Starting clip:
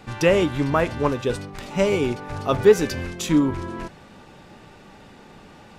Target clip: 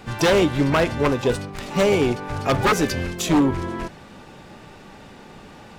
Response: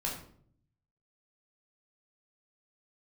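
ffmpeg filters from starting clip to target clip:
-filter_complex "[0:a]asplit=3[a][b][c];[b]asetrate=58866,aresample=44100,atempo=0.749154,volume=-17dB[d];[c]asetrate=88200,aresample=44100,atempo=0.5,volume=-16dB[e];[a][d][e]amix=inputs=3:normalize=0,aeval=exprs='0.2*(abs(mod(val(0)/0.2+3,4)-2)-1)':c=same,volume=3dB"

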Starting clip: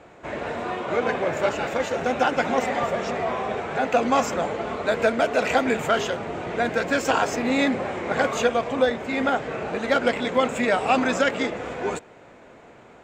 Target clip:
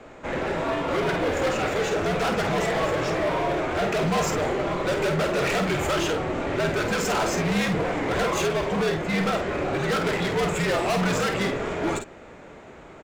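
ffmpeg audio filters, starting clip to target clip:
-filter_complex "[0:a]asoftclip=type=hard:threshold=-25dB,afreqshift=-71,asplit=2[a][b];[b]adelay=50,volume=-7dB[c];[a][c]amix=inputs=2:normalize=0,volume=3dB"

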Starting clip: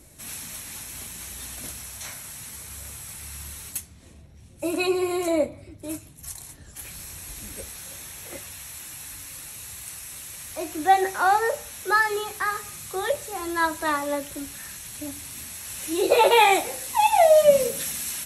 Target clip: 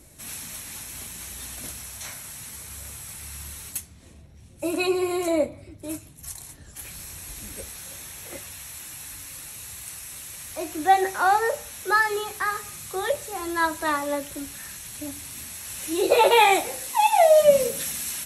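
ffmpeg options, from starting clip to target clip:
-filter_complex "[0:a]asettb=1/sr,asplit=3[a][b][c];[a]atrim=end=16.894[d];[b]atrim=start=16.89:end=17.4,asetpts=PTS-STARTPTS,afade=t=in:d=0.004:c=qsin,afade=t=out:st=0.506:d=0.004:c=qsin,highpass=230[e];[c]atrim=start=17.396[f];[d][e]acrossfade=d=0.004:c1=hsin:c2=qsin[g];[g][f]acrossfade=d=0.004:c1=qsin:c2=hsin"

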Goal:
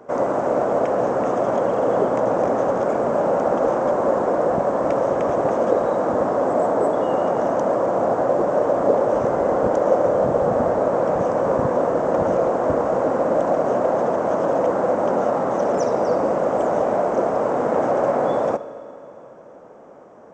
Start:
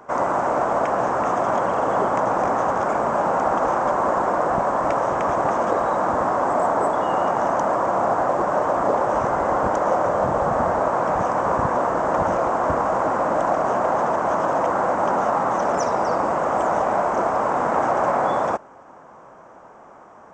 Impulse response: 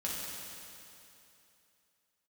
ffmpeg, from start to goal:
-filter_complex "[0:a]equalizer=f=125:t=o:w=1:g=5,equalizer=f=250:t=o:w=1:g=6,equalizer=f=500:t=o:w=1:g=11,equalizer=f=1k:t=o:w=1:g=-4,equalizer=f=4k:t=o:w=1:g=3,asplit=2[a][b];[1:a]atrim=start_sample=2205,adelay=67[c];[b][c]afir=irnorm=-1:irlink=0,volume=-18dB[d];[a][d]amix=inputs=2:normalize=0,volume=-5dB"

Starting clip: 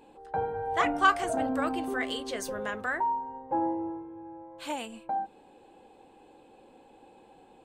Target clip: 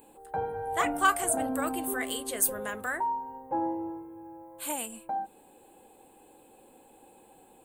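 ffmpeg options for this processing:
-af "aexciter=amount=11.3:drive=5.6:freq=8k,volume=-1.5dB"

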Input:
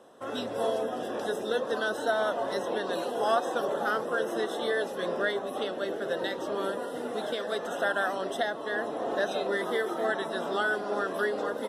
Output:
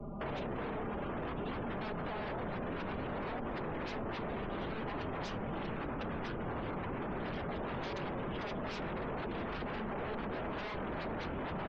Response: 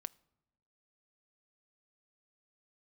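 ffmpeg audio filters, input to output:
-filter_complex "[0:a]asplit=2[a][b];[b]aeval=exprs='(mod(15.8*val(0)+1,2)-1)/15.8':c=same,volume=-7dB[c];[a][c]amix=inputs=2:normalize=0,lowpass=f=2.7k:w=0.5412,lowpass=f=2.7k:w=1.3066,aecho=1:1:1005|2010|3015|4020|5025:0.376|0.177|0.083|0.039|0.0183,acrossover=split=110[d][e];[e]acompressor=threshold=-35dB:ratio=12[f];[d][f]amix=inputs=2:normalize=0,afreqshift=-440,aecho=1:1:5:0.82[g];[1:a]atrim=start_sample=2205,asetrate=24255,aresample=44100[h];[g][h]afir=irnorm=-1:irlink=0,aeval=exprs='0.0106*(abs(mod(val(0)/0.0106+3,4)-2)-1)':c=same,afftdn=nr=24:nf=-58,acrossover=split=110|850[i][j][k];[i]acompressor=threshold=-56dB:ratio=4[l];[j]acompressor=threshold=-47dB:ratio=4[m];[k]acompressor=threshold=-55dB:ratio=4[n];[l][m][n]amix=inputs=3:normalize=0,volume=9.5dB"

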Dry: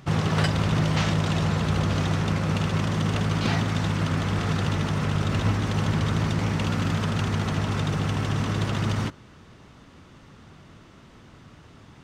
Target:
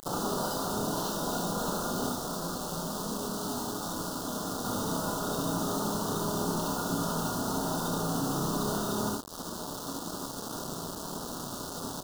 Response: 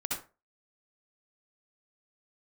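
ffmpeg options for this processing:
-filter_complex "[0:a]acontrast=72,alimiter=limit=-14dB:level=0:latency=1:release=60,highpass=250,tremolo=f=170:d=0.571,acompressor=threshold=-40dB:ratio=4,bandreject=f=50:t=h:w=6,bandreject=f=100:t=h:w=6,bandreject=f=150:t=h:w=6,bandreject=f=200:t=h:w=6,bandreject=f=250:t=h:w=6,bandreject=f=300:t=h:w=6,bandreject=f=350:t=h:w=6,bandreject=f=400:t=h:w=6,asplit=2[a][b];[b]adelay=60,lowpass=f=2k:p=1,volume=-13dB,asplit=2[c][d];[d]adelay=60,lowpass=f=2k:p=1,volume=0.54,asplit=2[e][f];[f]adelay=60,lowpass=f=2k:p=1,volume=0.54,asplit=2[g][h];[h]adelay=60,lowpass=f=2k:p=1,volume=0.54,asplit=2[i][j];[j]adelay=60,lowpass=f=2k:p=1,volume=0.54,asplit=2[k][l];[l]adelay=60,lowpass=f=2k:p=1,volume=0.54[m];[a][c][e][g][i][k][m]amix=inputs=7:normalize=0[n];[1:a]atrim=start_sample=2205,atrim=end_sample=3528[o];[n][o]afir=irnorm=-1:irlink=0,asettb=1/sr,asplit=3[p][q][r];[p]atrim=end=2.124[s];[q]atrim=start=2.12:end=4.65,asetpts=PTS-STARTPTS,afade=t=in:d=0.004:c=qsin,afade=t=out:st=2.526:d=0.004:c=qsin,flanger=delay=0.4:depth=8.6:regen=-52:speed=1:shape=triangular[t];[r]atrim=start=4.646[u];[s][t]acrossfade=d=0.004:c1=hsin:c2=qsin[v];[v][u]acrossfade=d=0.004:c1=qsin:c2=hsin,asplit=2[w][x];[x]adelay=29,volume=-3.5dB[y];[w][y]amix=inputs=2:normalize=0,acrusher=bits=6:mix=0:aa=0.000001,asuperstop=centerf=2200:order=4:qfactor=0.73,volume=7.5dB"

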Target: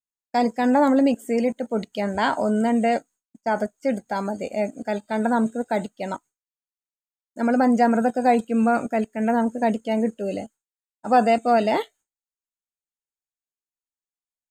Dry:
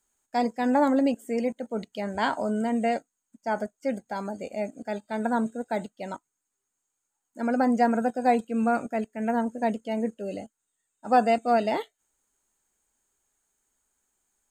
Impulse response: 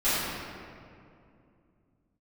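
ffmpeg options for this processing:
-filter_complex "[0:a]agate=range=-33dB:threshold=-48dB:ratio=3:detection=peak,asplit=2[a][b];[b]alimiter=limit=-20.5dB:level=0:latency=1:release=19,volume=-1.5dB[c];[a][c]amix=inputs=2:normalize=0,volume=1dB"

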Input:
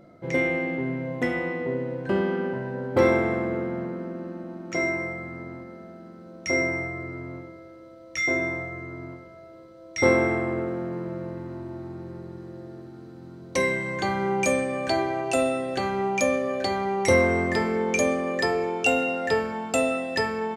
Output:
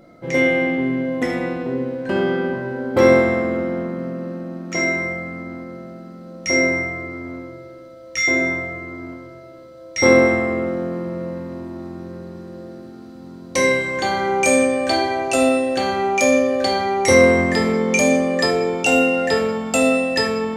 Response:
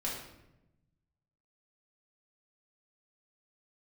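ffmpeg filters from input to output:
-filter_complex "[0:a]asplit=2[a][b];[1:a]atrim=start_sample=2205,highshelf=f=2.3k:g=11[c];[b][c]afir=irnorm=-1:irlink=0,volume=-5dB[d];[a][d]amix=inputs=2:normalize=0"

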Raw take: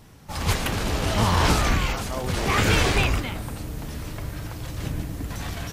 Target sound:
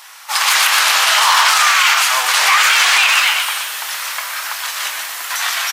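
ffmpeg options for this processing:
-filter_complex "[0:a]asoftclip=type=hard:threshold=-14.5dB,highpass=f=1k:w=0.5412,highpass=f=1k:w=1.3066,asplit=2[a][b];[b]adelay=24,volume=-12dB[c];[a][c]amix=inputs=2:normalize=0,asplit=2[d][e];[e]asplit=8[f][g][h][i][j][k][l][m];[f]adelay=122,afreqshift=110,volume=-8dB[n];[g]adelay=244,afreqshift=220,volume=-12.3dB[o];[h]adelay=366,afreqshift=330,volume=-16.6dB[p];[i]adelay=488,afreqshift=440,volume=-20.9dB[q];[j]adelay=610,afreqshift=550,volume=-25.2dB[r];[k]adelay=732,afreqshift=660,volume=-29.5dB[s];[l]adelay=854,afreqshift=770,volume=-33.8dB[t];[m]adelay=976,afreqshift=880,volume=-38.1dB[u];[n][o][p][q][r][s][t][u]amix=inputs=8:normalize=0[v];[d][v]amix=inputs=2:normalize=0,alimiter=level_in=20.5dB:limit=-1dB:release=50:level=0:latency=1,volume=-1.5dB"

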